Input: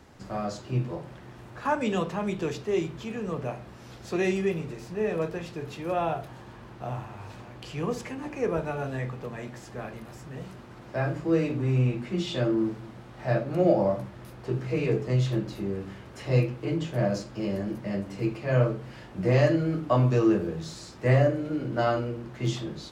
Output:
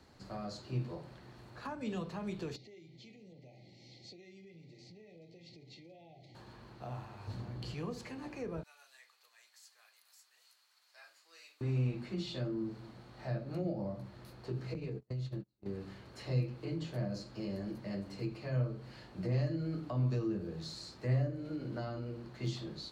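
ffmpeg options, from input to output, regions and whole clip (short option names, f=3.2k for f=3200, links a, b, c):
-filter_complex "[0:a]asettb=1/sr,asplit=3[a][b][c];[a]atrim=end=2.564[d];[b]atrim=start=2.56:end=6.35,asetpts=PTS-STARTPTS,afade=t=in:d=0.004:c=qsin,afade=t=out:st=3.786:d=0.004:c=qsin,highpass=f=120:w=0.5412,highpass=f=120:w=1.3066,equalizer=f=220:t=q:w=4:g=-6,equalizer=f=440:t=q:w=4:g=-8,equalizer=f=680:t=q:w=4:g=-8,equalizer=f=1k:t=q:w=4:g=-9,equalizer=f=1.9k:t=q:w=4:g=9,equalizer=f=2.6k:t=q:w=4:g=-6,lowpass=f=6.4k:w=0.5412,lowpass=f=6.4k:w=1.3066,acompressor=threshold=-43dB:ratio=12:attack=3.2:release=140:knee=1:detection=peak,asuperstop=centerf=1300:order=20:qfactor=1.1[e];[c]atrim=start=6.346[f];[d][e]acrossfade=d=0.004:c1=hsin:c2=qsin[g];[g][f]acrossfade=d=0.004:c1=qsin:c2=hsin,asettb=1/sr,asplit=3[h][i][j];[h]atrim=end=7.274[k];[i]atrim=start=7.27:end=7.74,asetpts=PTS-STARTPTS,afade=t=in:d=0.004:c=qsin,afade=t=out:st=0.466:d=0.004:c=qsin,equalizer=f=110:w=0.39:g=13,bandreject=f=2.5k:w=15[l];[j]atrim=start=7.736[m];[k][l]acrossfade=d=0.004:c1=hsin:c2=qsin[n];[n][m]acrossfade=d=0.004:c1=qsin:c2=hsin,asettb=1/sr,asplit=3[o][p][q];[o]atrim=end=8.634[r];[p]atrim=start=8.63:end=11.61,asetpts=PTS-STARTPTS,afade=t=in:d=0.004:c=qsin,afade=t=out:st=2.976:d=0.004:c=qsin,highpass=890,aderivative[s];[q]atrim=start=11.606[t];[r][s]acrossfade=d=0.004:c1=hsin:c2=qsin[u];[u][t]acrossfade=d=0.004:c1=qsin:c2=hsin,asettb=1/sr,asplit=3[v][w][x];[v]atrim=end=14.744[y];[w]atrim=start=14.74:end=15.66,asetpts=PTS-STARTPTS,afade=t=in:d=0.004:c=qsin,afade=t=out:st=0.916:d=0.004:c=qsin,agate=range=-44dB:threshold=-28dB:ratio=16:release=100:detection=peak,lowshelf=f=330:g=9,acompressor=threshold=-27dB:ratio=10:attack=3.2:release=140:knee=1:detection=peak[z];[x]atrim=start=15.656[aa];[y][z]acrossfade=d=0.004:c1=hsin:c2=qsin[ab];[ab][aa]acrossfade=d=0.004:c1=qsin:c2=hsin,equalizer=f=4.3k:w=6.7:g=13.5,acrossover=split=280[ac][ad];[ad]acompressor=threshold=-33dB:ratio=6[ae];[ac][ae]amix=inputs=2:normalize=0,volume=-8.5dB"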